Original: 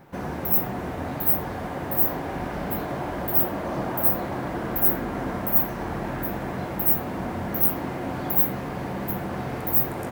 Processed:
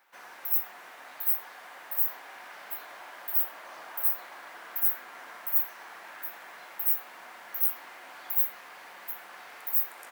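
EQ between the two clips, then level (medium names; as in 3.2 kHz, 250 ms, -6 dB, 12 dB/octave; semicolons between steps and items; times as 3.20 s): high-pass 1.4 kHz 12 dB/octave; -5.0 dB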